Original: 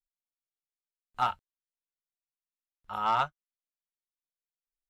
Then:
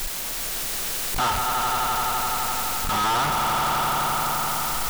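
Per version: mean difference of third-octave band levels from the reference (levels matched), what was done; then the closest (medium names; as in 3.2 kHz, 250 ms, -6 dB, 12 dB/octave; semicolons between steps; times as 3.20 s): 15.5 dB: jump at every zero crossing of -31 dBFS; on a send: echo with a slow build-up 85 ms, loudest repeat 5, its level -8.5 dB; on the sum: waveshaping leveller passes 5; trim -5 dB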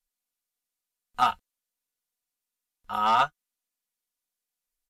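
2.0 dB: treble shelf 5.7 kHz +7 dB; comb 4.1 ms, depth 54%; resampled via 32 kHz; trim +4 dB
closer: second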